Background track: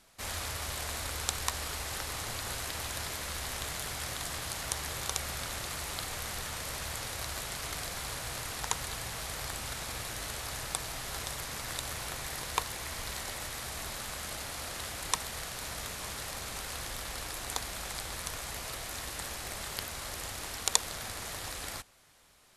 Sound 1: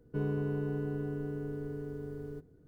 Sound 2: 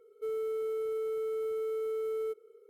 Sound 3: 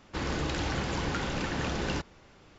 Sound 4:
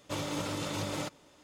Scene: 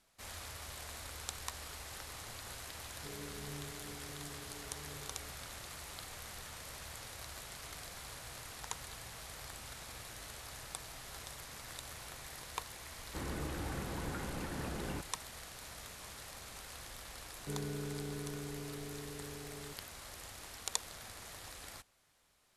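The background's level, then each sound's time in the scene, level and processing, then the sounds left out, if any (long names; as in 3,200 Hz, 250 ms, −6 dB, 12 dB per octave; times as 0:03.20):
background track −10 dB
0:02.89: mix in 1 −11.5 dB + micro pitch shift up and down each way 17 cents
0:13.00: mix in 3 −8 dB + high-frequency loss of the air 460 metres
0:17.33: mix in 1 −8 dB
not used: 2, 4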